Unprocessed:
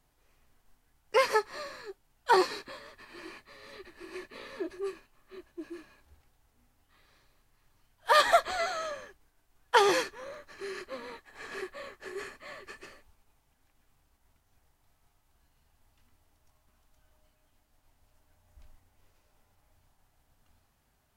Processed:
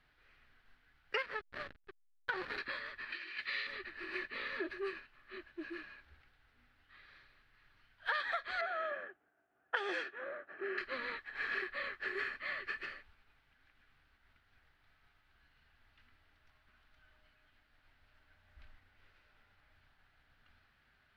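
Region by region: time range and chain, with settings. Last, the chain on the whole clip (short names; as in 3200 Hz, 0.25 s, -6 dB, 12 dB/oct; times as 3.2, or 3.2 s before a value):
1.22–2.58 high shelf 11000 Hz -7 dB + compressor 2.5:1, threshold -32 dBFS + backlash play -31.5 dBFS
3.12–3.67 weighting filter D + negative-ratio compressor -46 dBFS, ratio -0.5
8.61–10.78 low-pass opened by the level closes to 1100 Hz, open at -20 dBFS + speaker cabinet 220–10000 Hz, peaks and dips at 350 Hz +5 dB, 690 Hz +9 dB, 1000 Hz -7 dB, 2100 Hz -5 dB, 4300 Hz -7 dB, 8000 Hz +9 dB
whole clip: EQ curve 1000 Hz 0 dB, 1500 Hz +14 dB, 4300 Hz +5 dB, 6800 Hz -14 dB; compressor 12:1, threshold -30 dBFS; gain -3.5 dB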